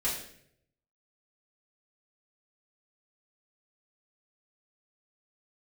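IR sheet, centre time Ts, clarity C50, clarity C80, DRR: 38 ms, 4.5 dB, 8.0 dB, -8.0 dB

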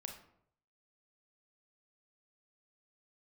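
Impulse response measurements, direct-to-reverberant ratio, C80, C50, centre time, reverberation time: 3.0 dB, 11.0 dB, 7.0 dB, 22 ms, 0.70 s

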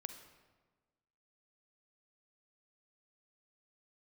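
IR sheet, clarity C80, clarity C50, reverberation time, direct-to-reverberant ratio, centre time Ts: 10.5 dB, 8.5 dB, 1.4 s, 8.0 dB, 18 ms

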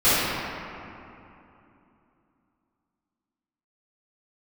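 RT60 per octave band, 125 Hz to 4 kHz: 3.3, 3.7, 2.8, 2.9, 2.4, 1.5 s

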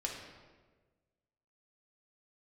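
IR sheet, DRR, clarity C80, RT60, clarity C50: -1.0 dB, 5.5 dB, 1.4 s, 3.0 dB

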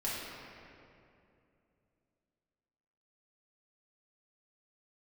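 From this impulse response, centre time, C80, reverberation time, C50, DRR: 0.146 s, 0.0 dB, 2.6 s, -2.0 dB, -8.0 dB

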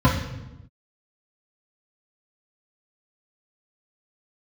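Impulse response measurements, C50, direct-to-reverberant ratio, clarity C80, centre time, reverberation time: 6.0 dB, -8.0 dB, 9.0 dB, 35 ms, 0.95 s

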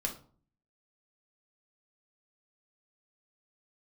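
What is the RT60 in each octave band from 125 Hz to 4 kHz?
0.70, 0.65, 0.45, 0.45, 0.30, 0.30 s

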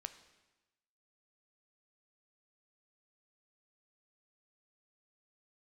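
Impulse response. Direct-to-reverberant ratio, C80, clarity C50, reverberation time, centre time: 9.5 dB, 14.0 dB, 12.5 dB, 1.1 s, 9 ms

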